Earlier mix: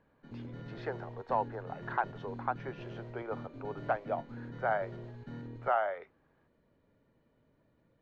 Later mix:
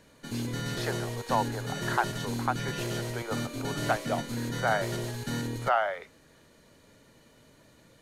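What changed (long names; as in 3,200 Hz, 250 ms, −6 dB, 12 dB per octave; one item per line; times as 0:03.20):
background +10.0 dB
master: remove head-to-tape spacing loss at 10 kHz 43 dB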